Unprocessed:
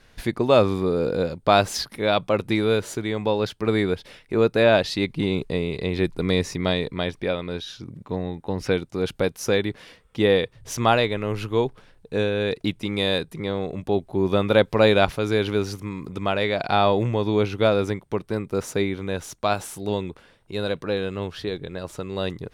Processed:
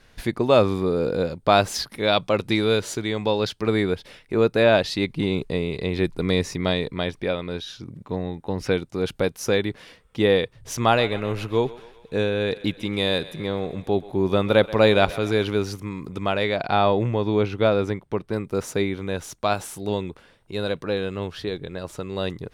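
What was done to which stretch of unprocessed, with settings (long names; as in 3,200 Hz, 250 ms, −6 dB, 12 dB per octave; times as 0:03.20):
0:01.98–0:03.68: parametric band 4,700 Hz +5.5 dB 1.5 octaves
0:10.82–0:15.45: feedback echo with a high-pass in the loop 131 ms, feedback 63%, level −17 dB
0:16.56–0:18.33: high-shelf EQ 5,700 Hz −9.5 dB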